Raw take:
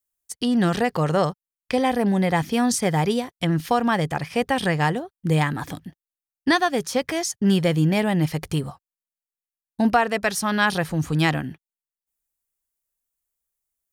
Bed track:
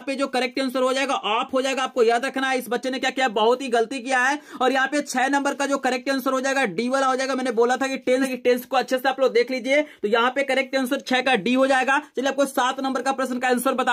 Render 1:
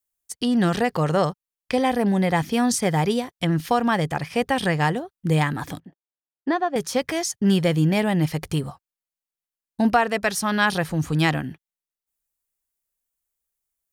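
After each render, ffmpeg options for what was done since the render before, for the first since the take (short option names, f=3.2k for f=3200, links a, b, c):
-filter_complex "[0:a]asettb=1/sr,asplit=3[a][b][c];[a]atrim=end=5.804[d];[b]atrim=start=5.8:end=6.76,asetpts=PTS-STARTPTS,afade=t=in:d=0.004:c=qsin,afade=t=out:st=0.956:d=0.004:c=qsin,bandpass=f=520:t=q:w=0.85[e];[c]atrim=start=6.756[f];[d][e]acrossfade=d=0.004:c1=hsin:c2=qsin[g];[g][f]acrossfade=d=0.004:c1=qsin:c2=hsin"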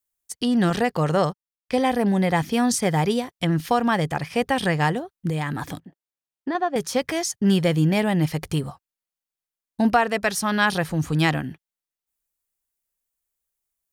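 -filter_complex "[0:a]asettb=1/sr,asplit=3[a][b][c];[a]atrim=end=0.704[d];[b]atrim=start=0.7:end=1.72,asetpts=PTS-STARTPTS,afade=t=in:d=0.004:c=qsin,afade=t=out:st=1.016:d=0.004:c=qsin,agate=range=-8dB:threshold=-32dB:ratio=16:release=100:detection=peak[e];[c]atrim=start=1.716[f];[d][e]acrossfade=d=0.004:c1=hsin:c2=qsin[g];[g][f]acrossfade=d=0.004:c1=qsin:c2=hsin,asettb=1/sr,asplit=3[h][i][j];[h]atrim=end=5.294[k];[i]atrim=start=5.29:end=6.55,asetpts=PTS-STARTPTS,afade=t=in:d=0.004:c=qsin,afade=t=out:st=1.256:d=0.004:c=qsin,acompressor=threshold=-22dB:ratio=4:attack=3.2:release=140:knee=1:detection=peak[l];[j]atrim=start=6.546[m];[k][l]acrossfade=d=0.004:c1=hsin:c2=qsin[n];[n][m]acrossfade=d=0.004:c1=qsin:c2=hsin"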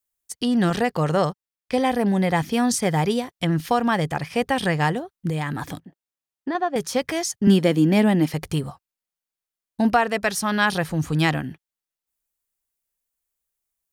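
-filter_complex "[0:a]asettb=1/sr,asplit=3[a][b][c];[a]atrim=end=7.474[d];[b]atrim=start=7.47:end=8.34,asetpts=PTS-STARTPTS,afade=t=in:d=0.004:c=qsin,afade=t=out:st=0.866:d=0.004:c=qsin,highpass=f=240:t=q:w=2.9[e];[c]atrim=start=8.336[f];[d][e]acrossfade=d=0.004:c1=hsin:c2=qsin[g];[g][f]acrossfade=d=0.004:c1=qsin:c2=hsin"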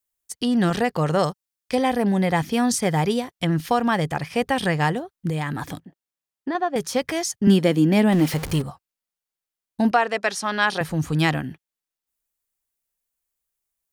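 -filter_complex "[0:a]asettb=1/sr,asplit=3[a][b][c];[a]atrim=end=1.194[d];[b]atrim=start=1.19:end=1.75,asetpts=PTS-STARTPTS,afade=t=in:d=0.004:c=qsin,afade=t=out:st=0.556:d=0.004:c=qsin,bass=f=250:g=-1,treble=f=4k:g=6[e];[c]atrim=start=1.746[f];[d][e]acrossfade=d=0.004:c1=hsin:c2=qsin[g];[g][f]acrossfade=d=0.004:c1=qsin:c2=hsin,asettb=1/sr,asplit=3[h][i][j];[h]atrim=end=8.124[k];[i]atrim=start=8.12:end=8.62,asetpts=PTS-STARTPTS,afade=t=in:d=0.004:c=qsin,afade=t=out:st=0.496:d=0.004:c=qsin,aeval=exprs='val(0)+0.5*0.0422*sgn(val(0))':c=same[l];[j]atrim=start=8.616[m];[k][l]acrossfade=d=0.004:c1=hsin:c2=qsin[n];[n][m]acrossfade=d=0.004:c1=qsin:c2=hsin,asettb=1/sr,asplit=3[o][p][q];[o]atrim=end=9.914[r];[p]atrim=start=9.91:end=10.81,asetpts=PTS-STARTPTS,afade=t=in:d=0.004:c=qsin,afade=t=out:st=0.896:d=0.004:c=qsin,highpass=300,lowpass=7.6k[s];[q]atrim=start=10.806[t];[r][s]acrossfade=d=0.004:c1=hsin:c2=qsin[u];[u][t]acrossfade=d=0.004:c1=qsin:c2=hsin"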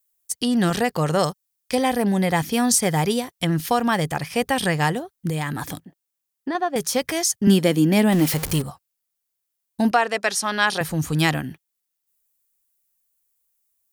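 -af "crystalizer=i=1.5:c=0"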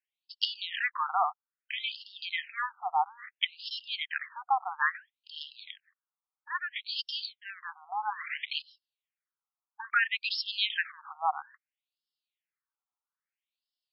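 -af "afftfilt=real='re*between(b*sr/1024,970*pow(3900/970,0.5+0.5*sin(2*PI*0.6*pts/sr))/1.41,970*pow(3900/970,0.5+0.5*sin(2*PI*0.6*pts/sr))*1.41)':imag='im*between(b*sr/1024,970*pow(3900/970,0.5+0.5*sin(2*PI*0.6*pts/sr))/1.41,970*pow(3900/970,0.5+0.5*sin(2*PI*0.6*pts/sr))*1.41)':win_size=1024:overlap=0.75"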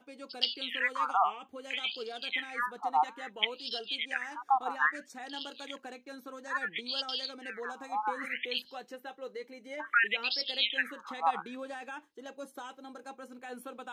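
-filter_complex "[1:a]volume=-23dB[a];[0:a][a]amix=inputs=2:normalize=0"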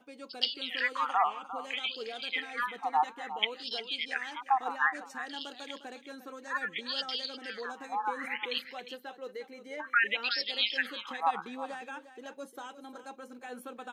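-af "aecho=1:1:353:0.224"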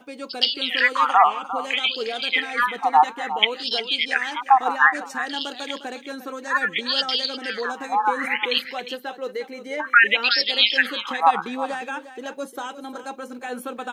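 -af "volume=12dB,alimiter=limit=-2dB:level=0:latency=1"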